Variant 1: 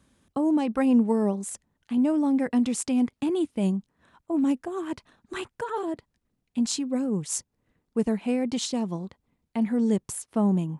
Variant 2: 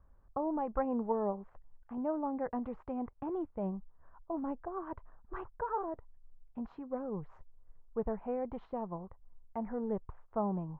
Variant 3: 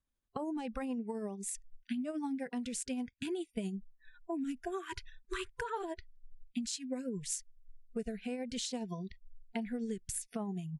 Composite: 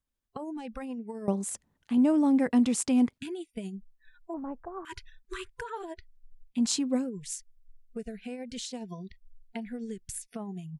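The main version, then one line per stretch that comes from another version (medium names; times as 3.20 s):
3
1.28–3.18 s: from 1
4.34–4.85 s: from 2
6.57–7.03 s: from 1, crossfade 0.16 s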